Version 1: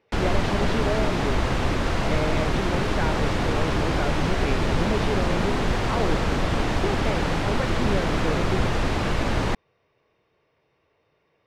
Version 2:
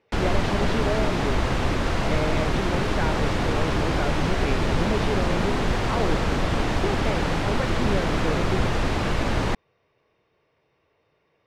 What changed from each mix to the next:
none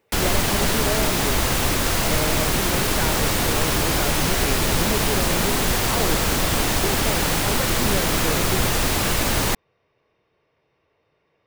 background: remove tape spacing loss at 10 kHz 24 dB

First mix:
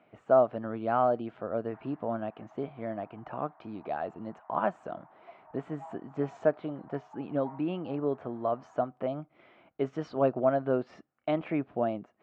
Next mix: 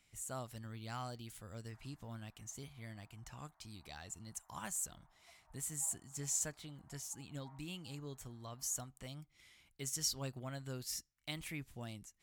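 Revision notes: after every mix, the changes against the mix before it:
speech: remove speaker cabinet 230–2400 Hz, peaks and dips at 650 Hz +9 dB, 1300 Hz +4 dB, 2000 Hz -7 dB; master: add passive tone stack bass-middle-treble 5-5-5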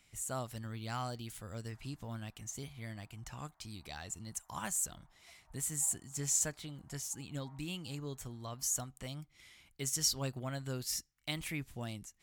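speech +5.0 dB

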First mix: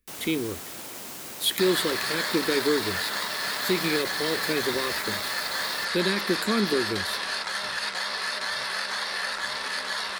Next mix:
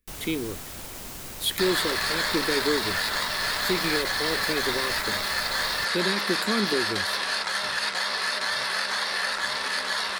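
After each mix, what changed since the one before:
first sound: remove HPF 200 Hz 12 dB/oct; second sound +3.0 dB; reverb: off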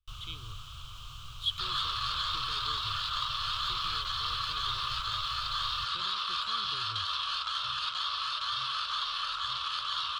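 speech -4.5 dB; master: add EQ curve 130 Hz 0 dB, 200 Hz -28 dB, 410 Hz -26 dB, 860 Hz -21 dB, 1200 Hz +4 dB, 1900 Hz -26 dB, 3100 Hz +4 dB, 4800 Hz -11 dB, 7400 Hz -16 dB, 10000 Hz -25 dB

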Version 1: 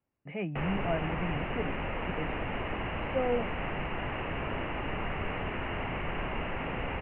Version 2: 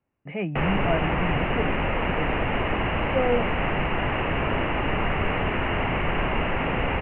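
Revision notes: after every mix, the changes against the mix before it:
speech +6.0 dB; background +9.5 dB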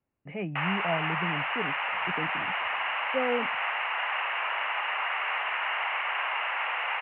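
speech -5.0 dB; background: add HPF 860 Hz 24 dB/oct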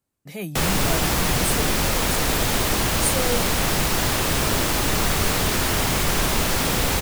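background: remove HPF 860 Hz 24 dB/oct; master: remove rippled Chebyshev low-pass 2900 Hz, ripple 3 dB

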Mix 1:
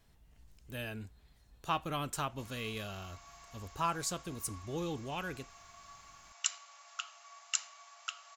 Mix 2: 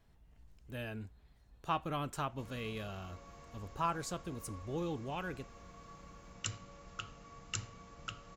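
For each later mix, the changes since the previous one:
background: remove brick-wall FIR high-pass 590 Hz; master: add high shelf 3000 Hz -9.5 dB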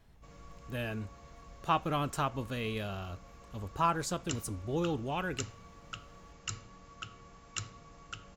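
speech +5.5 dB; background: entry -2.15 s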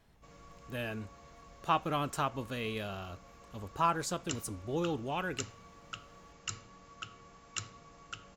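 master: add low shelf 120 Hz -7.5 dB

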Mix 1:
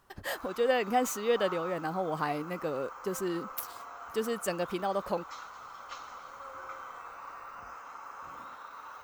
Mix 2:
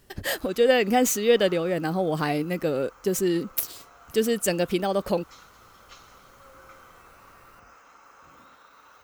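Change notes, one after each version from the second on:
speech +11.0 dB; master: add bell 1000 Hz -10 dB 1.3 oct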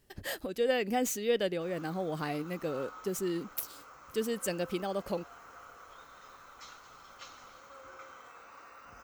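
speech -9.5 dB; background: entry +1.30 s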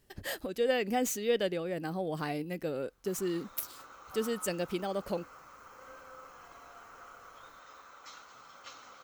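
background: entry +1.45 s

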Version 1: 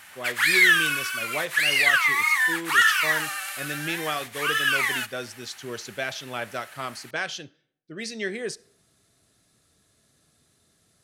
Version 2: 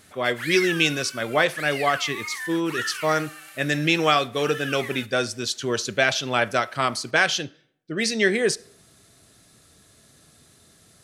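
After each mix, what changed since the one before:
speech +10.0 dB; background -11.5 dB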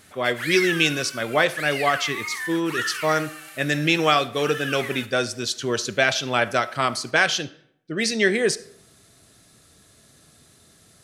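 speech: send +7.0 dB; background: send on

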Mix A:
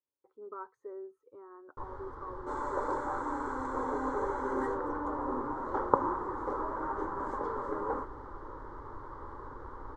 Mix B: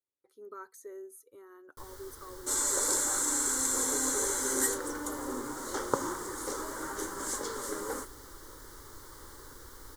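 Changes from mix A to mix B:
first sound -5.0 dB; master: remove synth low-pass 990 Hz, resonance Q 2.4

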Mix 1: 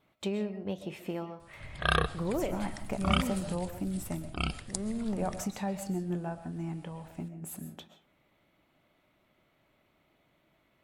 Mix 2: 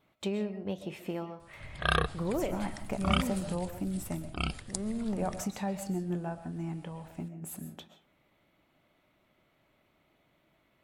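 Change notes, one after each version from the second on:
background: send -6.0 dB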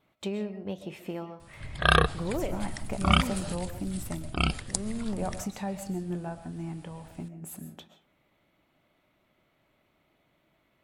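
background +6.5 dB

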